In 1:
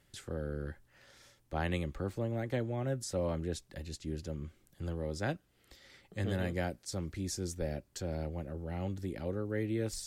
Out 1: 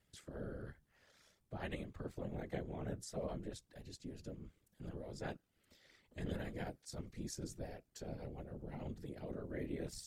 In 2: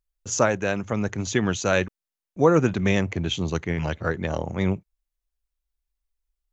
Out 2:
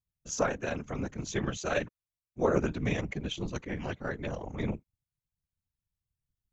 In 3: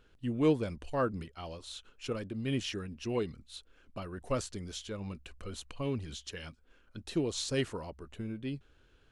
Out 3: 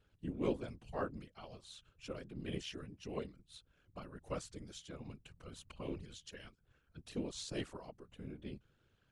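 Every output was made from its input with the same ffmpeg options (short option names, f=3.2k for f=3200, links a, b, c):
-af "aeval=exprs='val(0)*sin(2*PI*37*n/s)':c=same,aeval=exprs='0.562*(cos(1*acos(clip(val(0)/0.562,-1,1)))-cos(1*PI/2))+0.0112*(cos(4*acos(clip(val(0)/0.562,-1,1)))-cos(4*PI/2))':c=same,afftfilt=real='hypot(re,im)*cos(2*PI*random(0))':imag='hypot(re,im)*sin(2*PI*random(1))':win_size=512:overlap=0.75"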